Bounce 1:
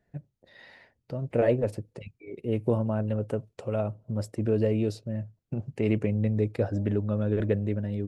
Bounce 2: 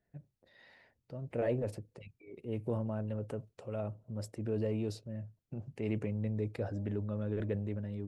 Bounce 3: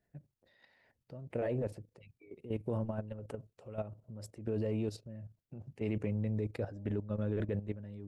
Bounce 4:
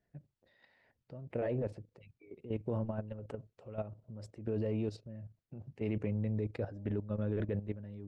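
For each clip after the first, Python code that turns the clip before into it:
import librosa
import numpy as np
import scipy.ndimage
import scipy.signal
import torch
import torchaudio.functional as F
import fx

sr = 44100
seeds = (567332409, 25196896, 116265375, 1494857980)

y1 = fx.transient(x, sr, attack_db=-2, sustain_db=5)
y1 = y1 * librosa.db_to_amplitude(-9.0)
y2 = fx.level_steps(y1, sr, step_db=12)
y2 = y2 * librosa.db_to_amplitude(2.5)
y3 = fx.air_absorb(y2, sr, metres=85.0)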